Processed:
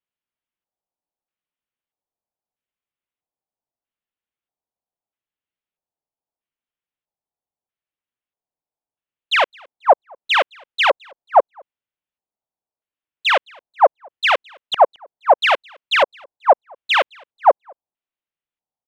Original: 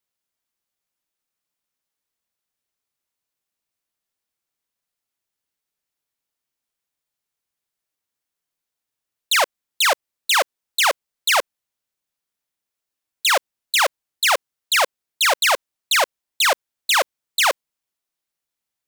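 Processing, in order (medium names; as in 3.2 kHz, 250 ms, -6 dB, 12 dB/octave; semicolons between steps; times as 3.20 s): peaking EQ 4.8 kHz -10.5 dB 2 oct; LFO low-pass square 0.78 Hz 800–3100 Hz; delay 215 ms -21 dB; upward expansion 1.5:1, over -32 dBFS; trim +5.5 dB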